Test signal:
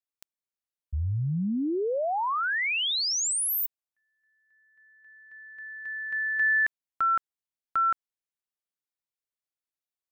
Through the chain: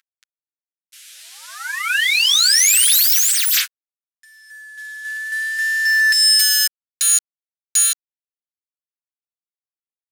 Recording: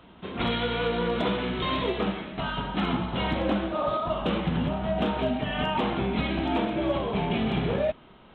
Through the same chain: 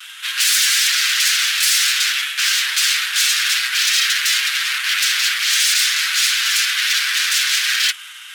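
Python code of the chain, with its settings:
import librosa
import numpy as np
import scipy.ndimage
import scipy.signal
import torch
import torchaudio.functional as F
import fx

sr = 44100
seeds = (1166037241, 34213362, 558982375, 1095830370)

y = fx.cvsd(x, sr, bps=64000)
y = fx.fold_sine(y, sr, drive_db=17, ceiling_db=-16.5)
y = fx.high_shelf(y, sr, hz=2000.0, db=9.0)
y = fx.vibrato(y, sr, rate_hz=0.57, depth_cents=24.0)
y = scipy.signal.sosfilt(scipy.signal.cheby1(4, 1.0, 1500.0, 'highpass', fs=sr, output='sos'), y)
y = y + 0.6 * np.pad(y, (int(7.5 * sr / 1000.0), 0))[:len(y)]
y = F.gain(torch.from_numpy(y), -2.5).numpy()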